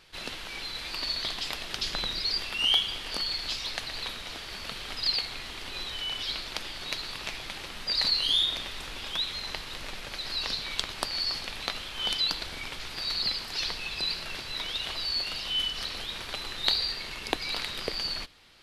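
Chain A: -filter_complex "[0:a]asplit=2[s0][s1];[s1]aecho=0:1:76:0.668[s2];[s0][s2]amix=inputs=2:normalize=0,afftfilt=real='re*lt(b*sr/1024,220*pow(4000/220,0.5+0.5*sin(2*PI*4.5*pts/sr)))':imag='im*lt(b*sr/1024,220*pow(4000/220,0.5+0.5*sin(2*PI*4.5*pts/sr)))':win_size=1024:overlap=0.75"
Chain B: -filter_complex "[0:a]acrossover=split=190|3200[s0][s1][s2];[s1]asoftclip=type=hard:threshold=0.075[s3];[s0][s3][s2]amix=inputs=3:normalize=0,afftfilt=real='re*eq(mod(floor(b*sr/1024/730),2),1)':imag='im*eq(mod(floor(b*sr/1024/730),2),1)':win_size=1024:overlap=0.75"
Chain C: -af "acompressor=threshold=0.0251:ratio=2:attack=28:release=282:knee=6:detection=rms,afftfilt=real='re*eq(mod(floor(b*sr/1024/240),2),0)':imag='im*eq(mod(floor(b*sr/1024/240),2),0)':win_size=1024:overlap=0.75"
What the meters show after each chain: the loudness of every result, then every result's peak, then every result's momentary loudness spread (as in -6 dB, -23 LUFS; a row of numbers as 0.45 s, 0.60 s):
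-38.0 LUFS, -34.0 LUFS, -36.0 LUFS; -12.0 dBFS, -13.0 dBFS, -16.0 dBFS; 10 LU, 11 LU, 8 LU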